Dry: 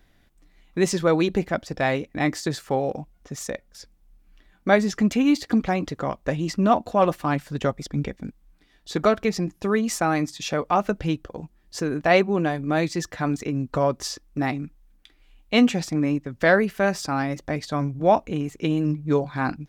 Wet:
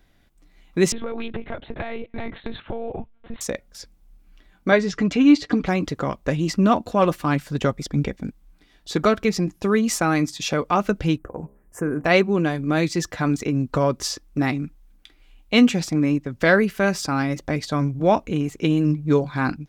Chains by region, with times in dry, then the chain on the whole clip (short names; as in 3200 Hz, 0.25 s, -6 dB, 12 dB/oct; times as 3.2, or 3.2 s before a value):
0.92–3.41 monotone LPC vocoder at 8 kHz 230 Hz + compressor 8:1, threshold -28 dBFS
4.71–5.66 LPF 5200 Hz + comb 6.8 ms, depth 47%
11.18–12.05 Chebyshev band-stop 1600–9200 Hz + de-hum 67.61 Hz, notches 16
whole clip: notch 1800 Hz, Q 21; dynamic EQ 730 Hz, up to -6 dB, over -35 dBFS, Q 1.7; AGC gain up to 4 dB